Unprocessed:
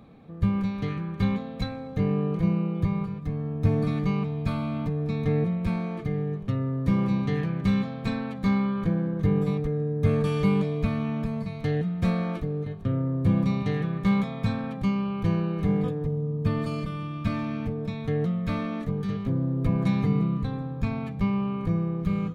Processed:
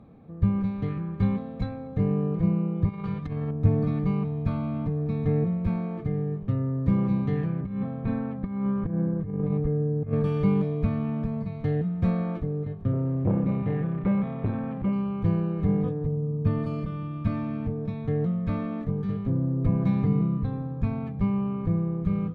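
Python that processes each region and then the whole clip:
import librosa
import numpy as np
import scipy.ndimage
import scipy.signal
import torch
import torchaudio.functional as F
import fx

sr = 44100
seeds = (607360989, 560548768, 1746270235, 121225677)

y = fx.chain(x, sr, fx.peak_eq(hz=3400.0, db=14.5, octaves=3.0),
    fx.notch(hz=2600.0, q=27.0),
    fx.over_compress(threshold_db=-30.0, ratio=-0.5), at=(2.89, 3.51))
y = fx.chain(y, sr, fx.air_absorb(metres=370.0),
    fx.over_compress(threshold_db=-26.0, ratio=-0.5), at=(7.6, 10.13))
y = fx.chain(y, sr, fx.zero_step(step_db=-40.0),
    fx.lowpass(hz=3100.0, slope=24),
    fx.transformer_sat(knee_hz=350.0), at=(12.93, 14.93))
y = fx.lowpass(y, sr, hz=1000.0, slope=6)
y = fx.peak_eq(y, sr, hz=90.0, db=3.0, octaves=0.77)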